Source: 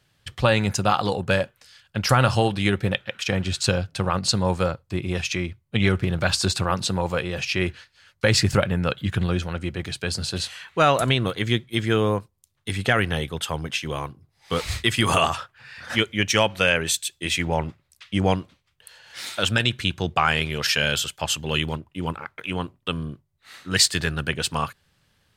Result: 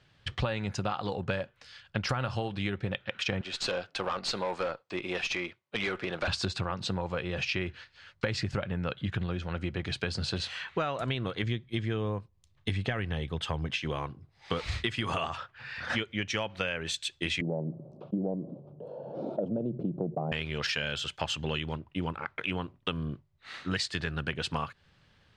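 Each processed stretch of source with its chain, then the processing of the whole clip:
3.41–6.28 s: high-pass 440 Hz + valve stage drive 23 dB, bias 0.25
11.43–13.83 s: bass shelf 140 Hz +8.5 dB + band-stop 1.4 kHz, Q 13
17.41–20.32 s: elliptic band-pass 150–620 Hz, stop band 50 dB + level flattener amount 50%
whole clip: low-pass 4.3 kHz 12 dB/octave; compression 10:1, threshold -30 dBFS; trim +2 dB

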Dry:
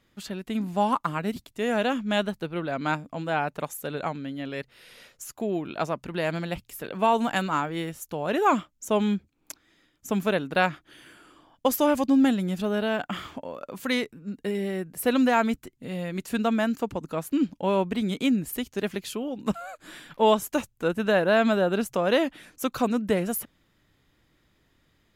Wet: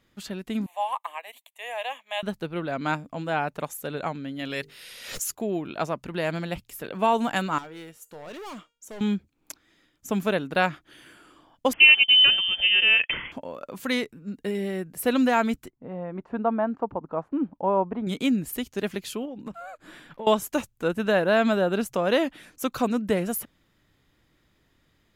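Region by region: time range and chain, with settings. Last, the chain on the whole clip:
0.66–2.23 s: Bessel high-pass 730 Hz, order 8 + static phaser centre 1.4 kHz, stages 6
4.39–5.35 s: treble shelf 2.2 kHz +10.5 dB + hum notches 50/100/150/200/250/300/350/400/450 Hz + swell ahead of each attack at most 70 dB/s
7.58–9.01 s: bass shelf 150 Hz -11.5 dB + overload inside the chain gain 29.5 dB + feedback comb 470 Hz, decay 0.41 s
11.73–13.32 s: peaking EQ 660 Hz +10 dB 1.5 oct + frequency inversion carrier 3.3 kHz
15.70–18.07 s: resonant low-pass 940 Hz, resonance Q 1.8 + bass shelf 370 Hz -5.5 dB
19.25–20.27 s: treble shelf 2.8 kHz -9 dB + compression 8:1, threshold -32 dBFS
whole clip: none

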